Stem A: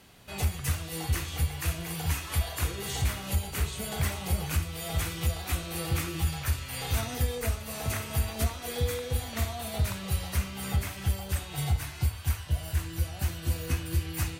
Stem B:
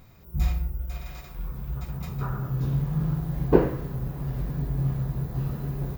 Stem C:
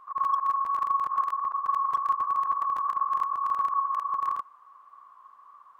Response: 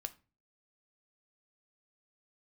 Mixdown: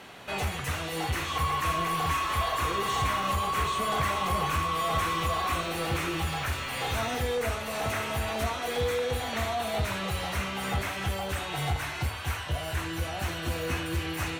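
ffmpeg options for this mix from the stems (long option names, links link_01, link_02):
-filter_complex "[0:a]asplit=2[link_01][link_02];[link_02]highpass=frequency=720:poles=1,volume=23dB,asoftclip=type=tanh:threshold=-17.5dB[link_03];[link_01][link_03]amix=inputs=2:normalize=0,lowpass=frequency=1600:poles=1,volume=-6dB,volume=-1dB[link_04];[1:a]acompressor=threshold=-26dB:ratio=6,aeval=exprs='0.0168*(abs(mod(val(0)/0.0168+3,4)-2)-1)':channel_layout=same,adelay=1150,volume=-9.5dB[link_05];[2:a]asplit=2[link_06][link_07];[link_07]highpass=frequency=720:poles=1,volume=18dB,asoftclip=type=tanh:threshold=-15.5dB[link_08];[link_06][link_08]amix=inputs=2:normalize=0,lowpass=frequency=1600:poles=1,volume=-6dB,adelay=1200,volume=-7.5dB[link_09];[link_04][link_05][link_09]amix=inputs=3:normalize=0,bandreject=frequency=4800:width=12"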